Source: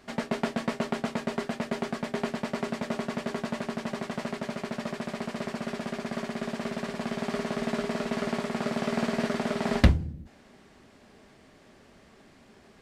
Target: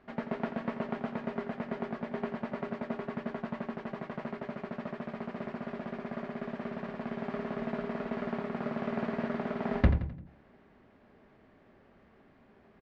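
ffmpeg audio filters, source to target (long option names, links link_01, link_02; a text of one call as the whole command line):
ffmpeg -i in.wav -filter_complex "[0:a]lowpass=2000,asplit=2[link_01][link_02];[link_02]aecho=0:1:86|172|258|344:0.282|0.118|0.0497|0.0209[link_03];[link_01][link_03]amix=inputs=2:normalize=0,volume=-5dB" out.wav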